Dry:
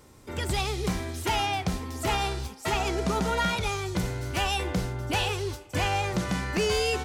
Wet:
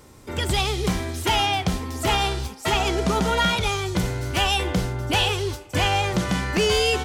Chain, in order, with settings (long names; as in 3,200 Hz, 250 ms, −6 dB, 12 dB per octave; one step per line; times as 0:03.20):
dynamic equaliser 3,200 Hz, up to +6 dB, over −49 dBFS, Q 5.9
level +5 dB